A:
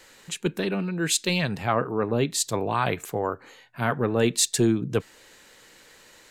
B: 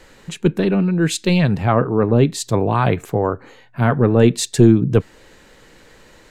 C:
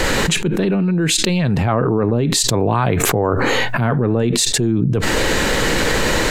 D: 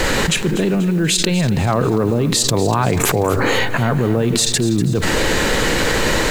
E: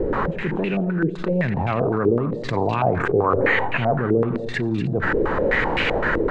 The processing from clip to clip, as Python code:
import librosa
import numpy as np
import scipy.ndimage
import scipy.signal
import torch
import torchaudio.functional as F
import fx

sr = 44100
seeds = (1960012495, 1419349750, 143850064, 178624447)

y1 = fx.tilt_eq(x, sr, slope=-2.5)
y1 = y1 * 10.0 ** (5.5 / 20.0)
y2 = fx.env_flatten(y1, sr, amount_pct=100)
y2 = y2 * 10.0 ** (-9.0 / 20.0)
y3 = fx.quant_dither(y2, sr, seeds[0], bits=8, dither='triangular')
y3 = fx.echo_feedback(y3, sr, ms=243, feedback_pct=50, wet_db=-14)
y4 = y3 + 10.0 ** (-14.5 / 20.0) * np.pad(y3, (int(89 * sr / 1000.0), 0))[:len(y3)]
y4 = fx.filter_held_lowpass(y4, sr, hz=7.8, low_hz=410.0, high_hz=2600.0)
y4 = y4 * 10.0 ** (-7.0 / 20.0)